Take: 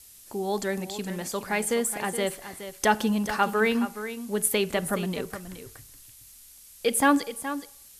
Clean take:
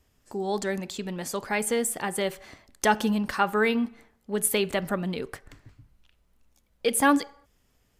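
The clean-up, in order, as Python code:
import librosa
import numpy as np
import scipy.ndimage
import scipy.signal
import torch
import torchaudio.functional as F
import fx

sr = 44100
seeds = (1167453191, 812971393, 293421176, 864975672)

y = fx.noise_reduce(x, sr, print_start_s=6.32, print_end_s=6.82, reduce_db=16.0)
y = fx.fix_echo_inverse(y, sr, delay_ms=421, level_db=-11.5)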